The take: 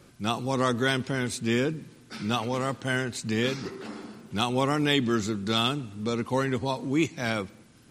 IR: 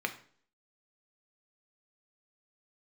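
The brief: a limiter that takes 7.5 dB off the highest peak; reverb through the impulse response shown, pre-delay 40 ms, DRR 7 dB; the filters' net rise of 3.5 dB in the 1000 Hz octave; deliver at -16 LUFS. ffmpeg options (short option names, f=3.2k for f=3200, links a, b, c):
-filter_complex "[0:a]equalizer=f=1k:t=o:g=4.5,alimiter=limit=-15.5dB:level=0:latency=1,asplit=2[a][b];[1:a]atrim=start_sample=2205,adelay=40[c];[b][c]afir=irnorm=-1:irlink=0,volume=-12.5dB[d];[a][d]amix=inputs=2:normalize=0,volume=12.5dB"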